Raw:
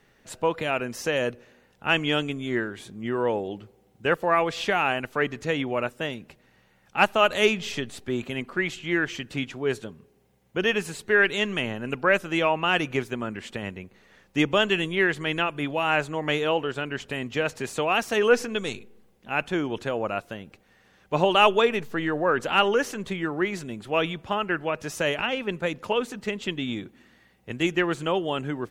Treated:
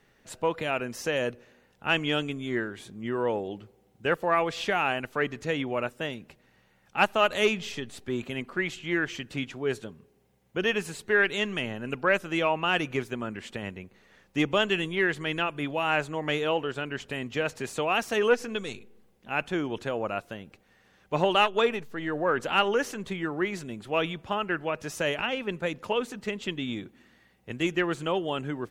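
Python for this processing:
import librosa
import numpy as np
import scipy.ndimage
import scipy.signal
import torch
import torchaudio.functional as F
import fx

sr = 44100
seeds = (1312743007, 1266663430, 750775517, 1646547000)

y = fx.transformer_sat(x, sr, knee_hz=520.0)
y = F.gain(torch.from_numpy(y), -2.5).numpy()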